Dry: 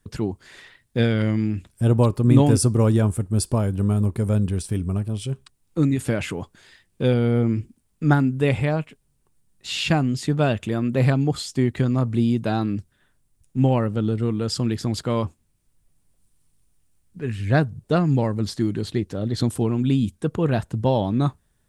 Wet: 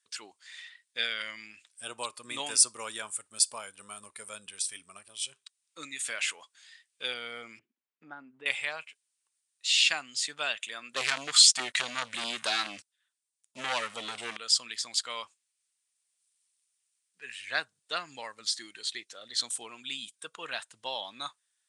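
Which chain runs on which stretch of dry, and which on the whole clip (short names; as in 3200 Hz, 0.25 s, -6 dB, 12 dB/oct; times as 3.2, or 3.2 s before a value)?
7.59–8.46 tilt shelf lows +9 dB, about 680 Hz + compressor 3:1, threshold -17 dBFS + BPF 200–2400 Hz
10.96–14.37 sample leveller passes 3 + LFO notch saw down 4.7 Hz 310–2600 Hz
whole clip: steep low-pass 9800 Hz 48 dB/oct; spectral noise reduction 6 dB; Bessel high-pass 2800 Hz, order 2; gain +5.5 dB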